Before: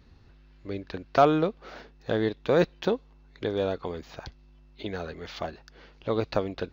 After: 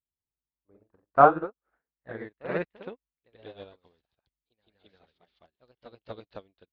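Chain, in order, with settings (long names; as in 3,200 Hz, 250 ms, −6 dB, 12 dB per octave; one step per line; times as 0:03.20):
delay with pitch and tempo change per echo 95 ms, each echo +1 semitone, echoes 2
low-pass filter sweep 1,000 Hz → 3,700 Hz, 0:00.72–0:03.89
expander for the loud parts 2.5 to 1, over −42 dBFS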